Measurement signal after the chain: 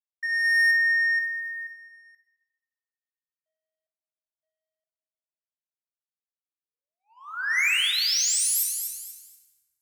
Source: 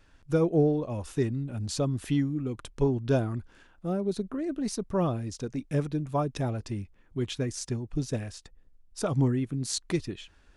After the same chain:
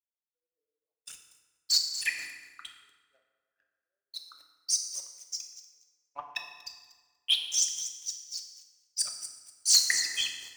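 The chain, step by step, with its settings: formant sharpening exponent 3; ladder high-pass 1900 Hz, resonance 55%; notch 3700 Hz, Q 24; on a send: thin delay 0.24 s, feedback 48%, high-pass 5100 Hz, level -7 dB; on the sum: AGC gain up to 10 dB; sample leveller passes 3; FDN reverb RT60 3 s, high-frequency decay 0.55×, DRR 2 dB; in parallel at -8 dB: soft clip -17 dBFS; on the sum: three-band expander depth 70%; gain -6 dB

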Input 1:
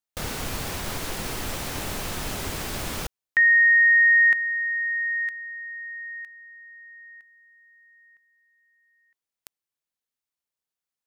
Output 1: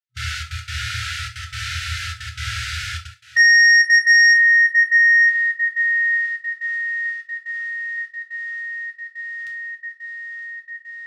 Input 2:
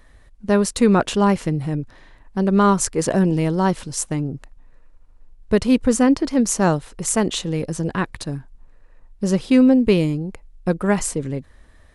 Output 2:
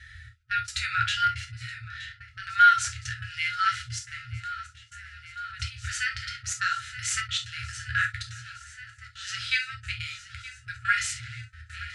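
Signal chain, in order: thinning echo 0.922 s, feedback 79%, high-pass 300 Hz, level -21 dB; step gate "xxxxx.x.xx" 177 bpm -24 dB; HPF 81 Hz 24 dB/oct; in parallel at -2 dB: compressor 5:1, threshold -32 dBFS; on the sum: FFT band-reject 120–1300 Hz; gate with hold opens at -49 dBFS, hold 13 ms, range -14 dB; dynamic EQ 160 Hz, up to -4 dB, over -52 dBFS, Q 0.91; harmonic-percussive split percussive -12 dB; overloaded stage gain 20 dB; LPF 4600 Hz 12 dB/oct; non-linear reverb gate 90 ms falling, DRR 1 dB; gain +8 dB

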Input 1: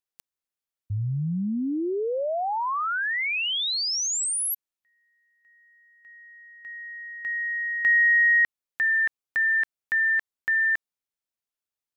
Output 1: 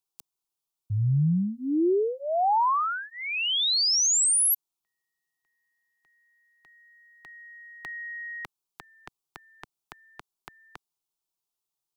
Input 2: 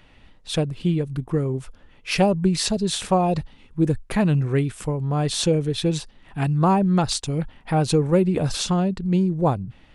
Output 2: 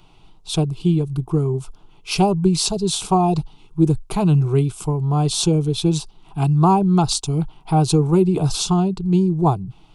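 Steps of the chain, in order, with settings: fixed phaser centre 360 Hz, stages 8; gain +5 dB

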